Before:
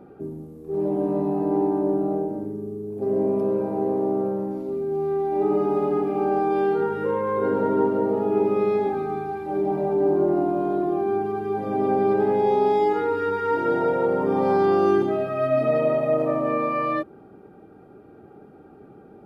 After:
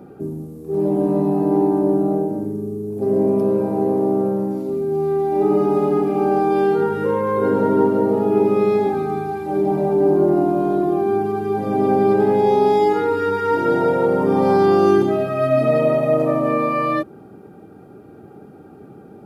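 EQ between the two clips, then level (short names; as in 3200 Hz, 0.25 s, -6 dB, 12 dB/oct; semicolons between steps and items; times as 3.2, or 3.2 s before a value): HPF 82 Hz; tone controls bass +5 dB, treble +8 dB; +4.0 dB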